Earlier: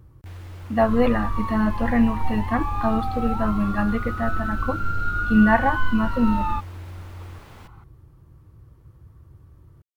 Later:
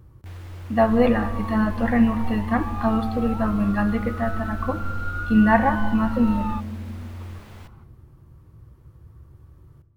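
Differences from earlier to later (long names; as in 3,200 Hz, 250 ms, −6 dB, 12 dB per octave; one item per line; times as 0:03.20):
second sound −5.0 dB
reverb: on, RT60 2.0 s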